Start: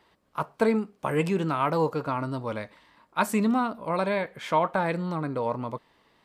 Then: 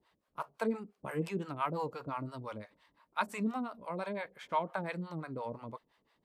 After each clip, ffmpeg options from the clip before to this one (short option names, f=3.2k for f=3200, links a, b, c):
-filter_complex "[0:a]acrossover=split=530[a][b];[a]aeval=exprs='val(0)*(1-1/2+1/2*cos(2*PI*5.8*n/s))':c=same[c];[b]aeval=exprs='val(0)*(1-1/2-1/2*cos(2*PI*5.8*n/s))':c=same[d];[c][d]amix=inputs=2:normalize=0,volume=-6dB"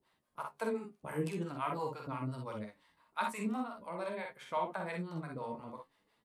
-filter_complex "[0:a]equalizer=f=10k:t=o:w=0.62:g=7,flanger=delay=7.5:depth=5.5:regen=56:speed=0.46:shape=sinusoidal,asplit=2[a][b];[b]aecho=0:1:47|61:0.531|0.501[c];[a][c]amix=inputs=2:normalize=0,volume=1dB"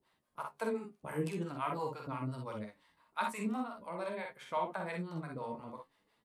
-af anull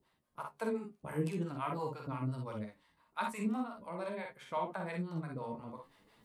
-af "lowshelf=f=250:g=6.5,areverse,acompressor=mode=upward:threshold=-54dB:ratio=2.5,areverse,volume=-2dB"